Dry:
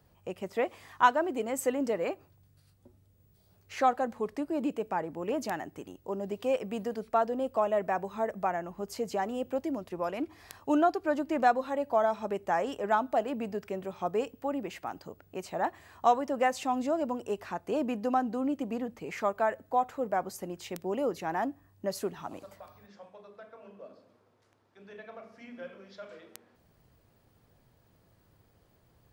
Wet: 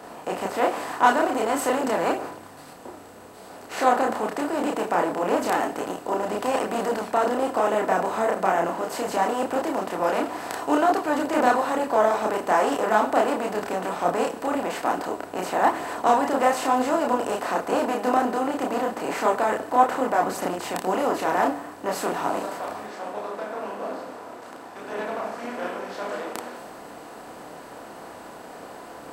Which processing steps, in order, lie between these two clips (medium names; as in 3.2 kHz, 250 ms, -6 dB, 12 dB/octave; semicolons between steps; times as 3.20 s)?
spectral levelling over time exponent 0.4; chorus voices 2, 1.1 Hz, delay 30 ms, depth 3.3 ms; three bands expanded up and down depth 40%; trim +3 dB